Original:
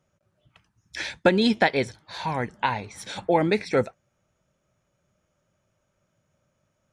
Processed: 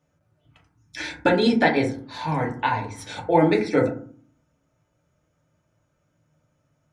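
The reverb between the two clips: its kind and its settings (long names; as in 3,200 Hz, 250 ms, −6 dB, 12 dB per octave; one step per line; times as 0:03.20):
feedback delay network reverb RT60 0.47 s, low-frequency decay 1.55×, high-frequency decay 0.35×, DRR −1.5 dB
level −2.5 dB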